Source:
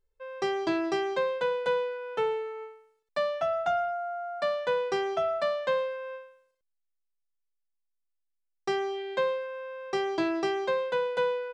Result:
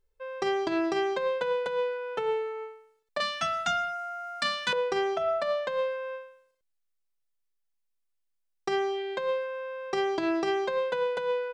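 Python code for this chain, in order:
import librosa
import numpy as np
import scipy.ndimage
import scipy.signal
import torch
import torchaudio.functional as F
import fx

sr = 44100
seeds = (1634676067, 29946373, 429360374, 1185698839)

y = fx.curve_eq(x, sr, hz=(120.0, 240.0, 490.0, 1200.0, 5700.0), db=(0, 8, -18, 2, 14), at=(3.2, 4.73))
y = fx.over_compress(y, sr, threshold_db=-28.0, ratio=-0.5)
y = y * 10.0 ** (1.5 / 20.0)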